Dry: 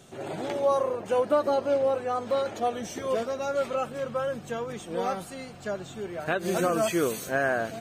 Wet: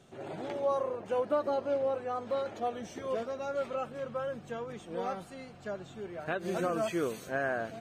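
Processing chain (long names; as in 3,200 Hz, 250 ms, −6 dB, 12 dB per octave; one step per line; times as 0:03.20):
high-shelf EQ 6,100 Hz −11 dB
level −6 dB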